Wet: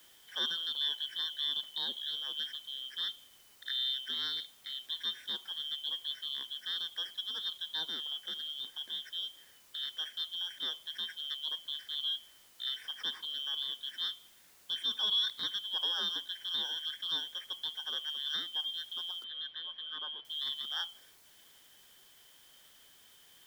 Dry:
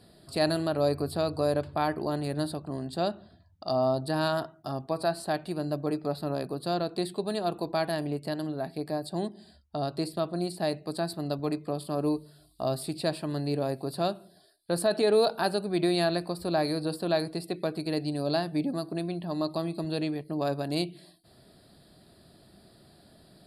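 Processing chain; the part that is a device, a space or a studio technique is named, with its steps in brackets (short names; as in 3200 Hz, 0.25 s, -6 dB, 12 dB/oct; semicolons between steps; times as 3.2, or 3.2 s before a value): split-band scrambled radio (four-band scrambler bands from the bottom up 2413; BPF 390–3100 Hz; white noise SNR 23 dB); 19.24–20.25 LPF 3200 Hz 24 dB/oct; gain -4.5 dB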